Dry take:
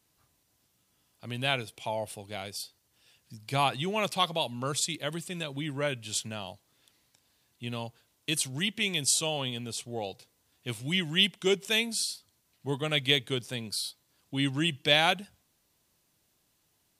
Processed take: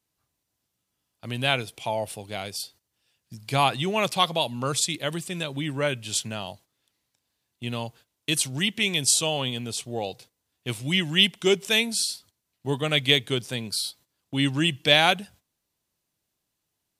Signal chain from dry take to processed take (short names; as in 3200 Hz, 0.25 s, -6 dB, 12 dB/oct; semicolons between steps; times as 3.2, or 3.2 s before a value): gate -55 dBFS, range -13 dB; gain +5 dB